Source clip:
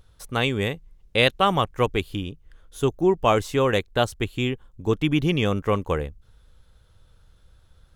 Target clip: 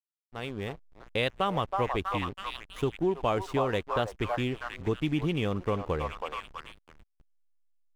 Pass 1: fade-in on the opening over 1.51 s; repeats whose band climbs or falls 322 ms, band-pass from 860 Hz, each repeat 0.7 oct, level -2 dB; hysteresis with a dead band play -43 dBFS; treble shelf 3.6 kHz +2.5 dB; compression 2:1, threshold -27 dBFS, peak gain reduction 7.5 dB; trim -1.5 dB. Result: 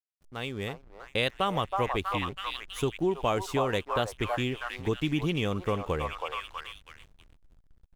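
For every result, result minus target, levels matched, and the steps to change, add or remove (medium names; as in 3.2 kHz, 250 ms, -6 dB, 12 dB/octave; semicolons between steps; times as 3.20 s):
8 kHz band +6.5 dB; hysteresis with a dead band: distortion -9 dB
change: treble shelf 3.6 kHz -4.5 dB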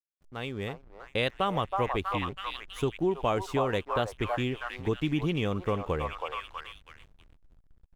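hysteresis with a dead band: distortion -9 dB
change: hysteresis with a dead band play -33 dBFS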